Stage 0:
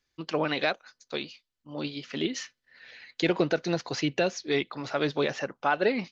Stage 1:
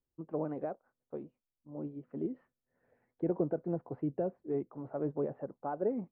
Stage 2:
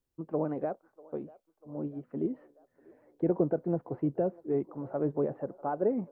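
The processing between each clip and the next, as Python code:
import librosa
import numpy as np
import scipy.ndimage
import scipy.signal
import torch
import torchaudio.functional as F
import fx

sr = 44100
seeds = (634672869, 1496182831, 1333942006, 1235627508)

y1 = scipy.signal.sosfilt(scipy.signal.bessel(4, 590.0, 'lowpass', norm='mag', fs=sr, output='sos'), x)
y1 = y1 * librosa.db_to_amplitude(-5.0)
y2 = fx.echo_wet_bandpass(y1, sr, ms=643, feedback_pct=61, hz=770.0, wet_db=-21.0)
y2 = y2 * librosa.db_to_amplitude(4.5)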